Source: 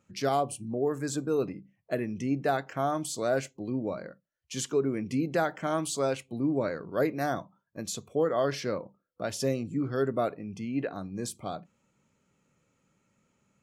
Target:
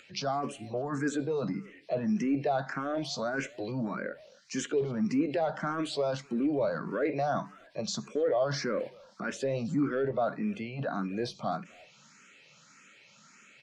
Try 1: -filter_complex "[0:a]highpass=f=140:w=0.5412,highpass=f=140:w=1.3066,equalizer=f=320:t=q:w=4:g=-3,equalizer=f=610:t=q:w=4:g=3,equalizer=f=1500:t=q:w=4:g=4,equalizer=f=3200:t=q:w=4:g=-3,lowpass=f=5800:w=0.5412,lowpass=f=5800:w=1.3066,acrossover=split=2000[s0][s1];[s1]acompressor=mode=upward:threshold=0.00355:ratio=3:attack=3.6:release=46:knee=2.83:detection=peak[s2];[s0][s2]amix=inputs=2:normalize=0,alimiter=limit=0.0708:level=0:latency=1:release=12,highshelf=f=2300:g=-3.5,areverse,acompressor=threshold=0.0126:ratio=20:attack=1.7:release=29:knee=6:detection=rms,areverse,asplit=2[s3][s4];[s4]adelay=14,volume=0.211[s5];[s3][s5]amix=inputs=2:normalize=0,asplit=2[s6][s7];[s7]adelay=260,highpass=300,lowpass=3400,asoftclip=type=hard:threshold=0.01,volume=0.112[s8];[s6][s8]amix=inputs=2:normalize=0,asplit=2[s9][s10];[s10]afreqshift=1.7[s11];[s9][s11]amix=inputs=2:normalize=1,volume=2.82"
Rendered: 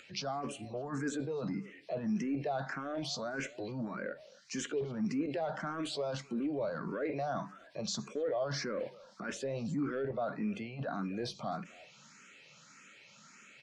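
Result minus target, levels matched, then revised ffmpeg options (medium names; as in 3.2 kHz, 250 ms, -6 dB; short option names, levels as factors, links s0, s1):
compression: peak gain reduction +6.5 dB
-filter_complex "[0:a]highpass=f=140:w=0.5412,highpass=f=140:w=1.3066,equalizer=f=320:t=q:w=4:g=-3,equalizer=f=610:t=q:w=4:g=3,equalizer=f=1500:t=q:w=4:g=4,equalizer=f=3200:t=q:w=4:g=-3,lowpass=f=5800:w=0.5412,lowpass=f=5800:w=1.3066,acrossover=split=2000[s0][s1];[s1]acompressor=mode=upward:threshold=0.00355:ratio=3:attack=3.6:release=46:knee=2.83:detection=peak[s2];[s0][s2]amix=inputs=2:normalize=0,alimiter=limit=0.0708:level=0:latency=1:release=12,highshelf=f=2300:g=-3.5,areverse,acompressor=threshold=0.0282:ratio=20:attack=1.7:release=29:knee=6:detection=rms,areverse,asplit=2[s3][s4];[s4]adelay=14,volume=0.211[s5];[s3][s5]amix=inputs=2:normalize=0,asplit=2[s6][s7];[s7]adelay=260,highpass=300,lowpass=3400,asoftclip=type=hard:threshold=0.01,volume=0.112[s8];[s6][s8]amix=inputs=2:normalize=0,asplit=2[s9][s10];[s10]afreqshift=1.7[s11];[s9][s11]amix=inputs=2:normalize=1,volume=2.82"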